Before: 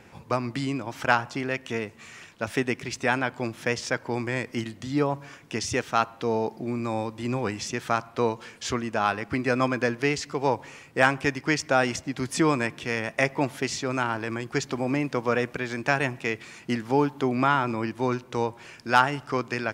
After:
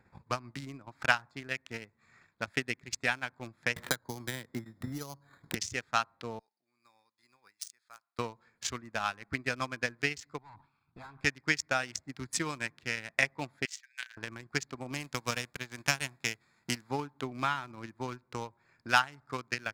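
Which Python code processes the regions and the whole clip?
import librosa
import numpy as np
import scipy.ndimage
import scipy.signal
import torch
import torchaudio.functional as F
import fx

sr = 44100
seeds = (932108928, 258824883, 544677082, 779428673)

y = fx.chain(x, sr, fx.lowpass(hz=2100.0, slope=24),
    fx.resample_bad(factor=8, down='filtered', up='hold'),
    fx.band_squash(depth_pct=100), at=(3.76, 5.55))
y = fx.chain(y, sr, fx.bandpass_q(hz=6200.0, q=1.7),
    fx.resample_bad(factor=3, down='filtered', up='hold'), at=(6.39, 8.19))
y = fx.chain(y, sr, fx.fixed_phaser(hz=1900.0, stages=6),
    fx.tube_stage(drive_db=34.0, bias=0.6),
    fx.sustainer(db_per_s=90.0), at=(10.38, 11.21))
y = fx.chain(y, sr, fx.brickwall_bandpass(low_hz=1500.0, high_hz=10000.0),
    fx.high_shelf(hz=6100.0, db=-3.0), at=(13.65, 14.17))
y = fx.envelope_flatten(y, sr, power=0.6, at=(14.92, 16.89), fade=0.02)
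y = fx.dynamic_eq(y, sr, hz=1600.0, q=0.86, threshold_db=-35.0, ratio=4.0, max_db=-3, at=(14.92, 16.89), fade=0.02)
y = fx.wiener(y, sr, points=15)
y = fx.tone_stack(y, sr, knobs='5-5-5')
y = fx.transient(y, sr, attack_db=9, sustain_db=-7)
y = y * 10.0 ** (2.0 / 20.0)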